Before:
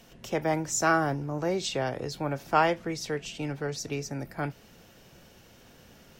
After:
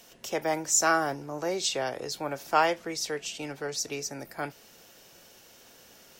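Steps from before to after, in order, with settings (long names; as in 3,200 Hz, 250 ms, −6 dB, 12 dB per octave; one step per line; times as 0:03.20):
bass and treble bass −12 dB, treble +7 dB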